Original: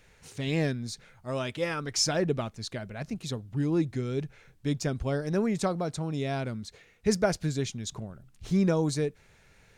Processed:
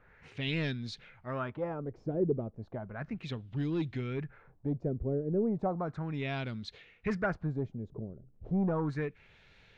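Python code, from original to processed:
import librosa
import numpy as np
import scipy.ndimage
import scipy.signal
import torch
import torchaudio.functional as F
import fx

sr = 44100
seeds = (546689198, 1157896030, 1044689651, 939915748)

y = 10.0 ** (-20.5 / 20.0) * np.tanh(x / 10.0 ** (-20.5 / 20.0))
y = fx.filter_lfo_lowpass(y, sr, shape='sine', hz=0.34, low_hz=420.0, high_hz=3600.0, q=2.4)
y = fx.dynamic_eq(y, sr, hz=550.0, q=1.2, threshold_db=-40.0, ratio=4.0, max_db=-4)
y = y * librosa.db_to_amplitude(-3.0)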